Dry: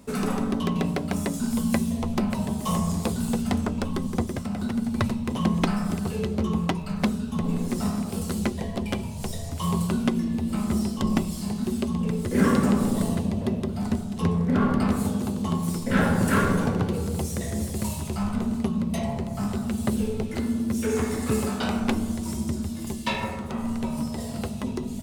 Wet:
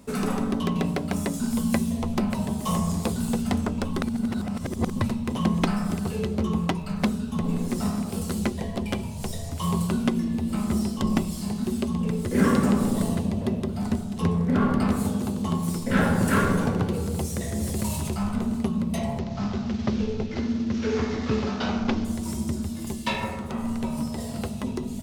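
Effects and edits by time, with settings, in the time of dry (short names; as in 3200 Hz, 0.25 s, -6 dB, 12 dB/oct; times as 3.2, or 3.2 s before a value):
4.02–5.01 reverse
17.63–18.14 fast leveller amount 50%
19.19–22.05 CVSD 32 kbps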